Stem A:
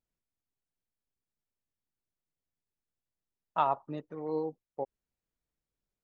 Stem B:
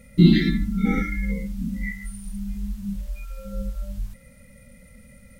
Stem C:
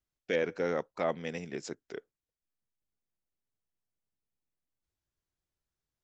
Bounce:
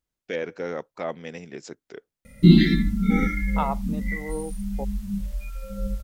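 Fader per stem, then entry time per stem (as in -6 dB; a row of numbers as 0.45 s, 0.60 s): +1.0 dB, +1.0 dB, +0.5 dB; 0.00 s, 2.25 s, 0.00 s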